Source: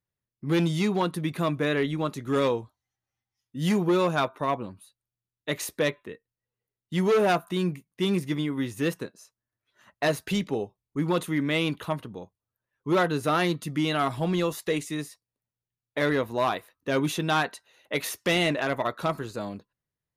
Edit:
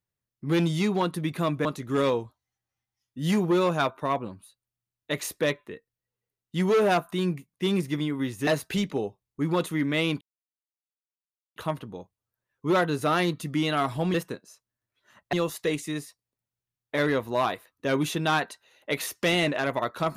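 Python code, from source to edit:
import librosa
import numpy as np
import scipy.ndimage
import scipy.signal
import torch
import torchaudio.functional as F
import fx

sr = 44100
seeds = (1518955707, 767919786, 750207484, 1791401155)

y = fx.edit(x, sr, fx.cut(start_s=1.65, length_s=0.38),
    fx.move(start_s=8.85, length_s=1.19, to_s=14.36),
    fx.insert_silence(at_s=11.78, length_s=1.35), tone=tone)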